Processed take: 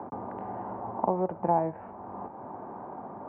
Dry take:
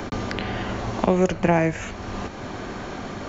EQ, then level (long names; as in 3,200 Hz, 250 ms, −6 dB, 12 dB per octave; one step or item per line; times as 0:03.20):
high-pass filter 140 Hz 12 dB per octave
transistor ladder low-pass 990 Hz, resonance 65%
0.0 dB